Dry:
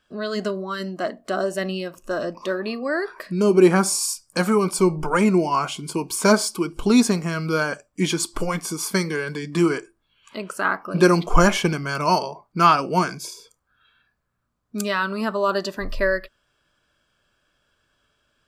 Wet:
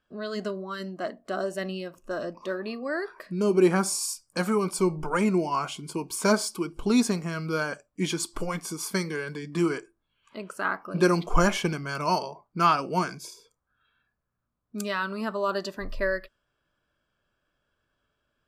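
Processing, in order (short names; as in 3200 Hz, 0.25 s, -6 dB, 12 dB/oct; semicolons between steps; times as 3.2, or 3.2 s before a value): mismatched tape noise reduction decoder only; gain -6 dB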